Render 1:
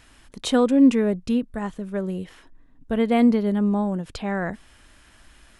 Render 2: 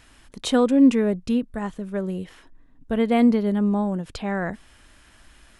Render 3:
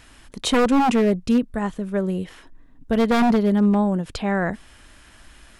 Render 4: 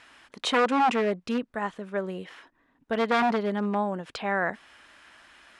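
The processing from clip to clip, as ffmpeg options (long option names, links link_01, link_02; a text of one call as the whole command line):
ffmpeg -i in.wav -af anull out.wav
ffmpeg -i in.wav -af "aeval=exprs='0.168*(abs(mod(val(0)/0.168+3,4)-2)-1)':channel_layout=same,volume=4dB" out.wav
ffmpeg -i in.wav -af "bandpass=frequency=1500:width_type=q:width=0.53:csg=0" out.wav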